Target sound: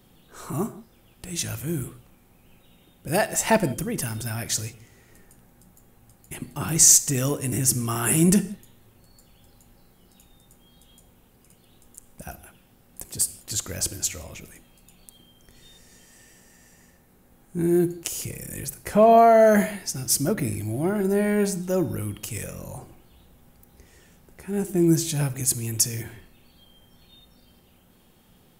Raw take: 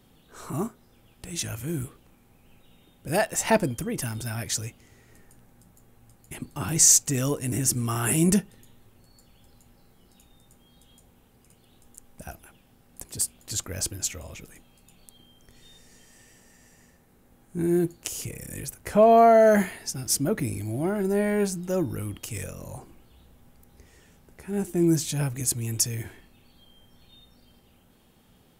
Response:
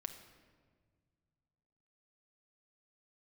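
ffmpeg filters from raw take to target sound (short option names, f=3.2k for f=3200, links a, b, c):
-filter_complex "[0:a]asplit=2[a][b];[1:a]atrim=start_sample=2205,afade=t=out:st=0.23:d=0.01,atrim=end_sample=10584,highshelf=f=11k:g=8.5[c];[b][c]afir=irnorm=-1:irlink=0,volume=3.5dB[d];[a][d]amix=inputs=2:normalize=0,volume=-4.5dB"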